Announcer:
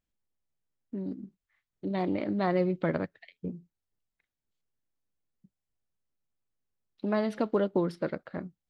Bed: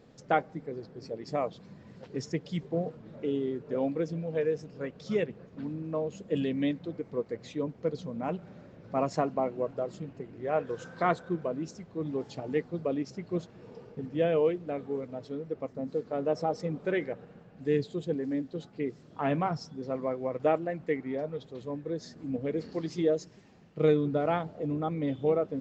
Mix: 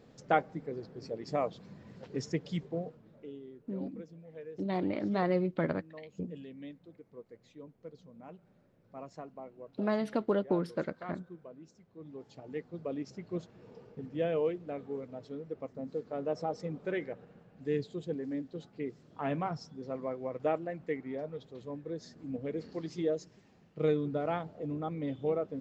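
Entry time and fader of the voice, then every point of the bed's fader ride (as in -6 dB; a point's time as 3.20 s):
2.75 s, -2.5 dB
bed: 2.52 s -1 dB
3.41 s -17 dB
11.76 s -17 dB
13.08 s -5 dB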